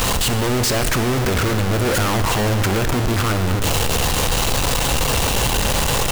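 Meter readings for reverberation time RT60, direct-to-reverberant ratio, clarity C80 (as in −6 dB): 2.7 s, 8.0 dB, 9.5 dB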